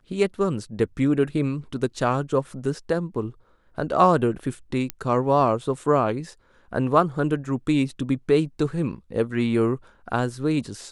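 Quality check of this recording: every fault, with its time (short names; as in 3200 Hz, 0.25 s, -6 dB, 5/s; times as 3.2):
4.9 pop -10 dBFS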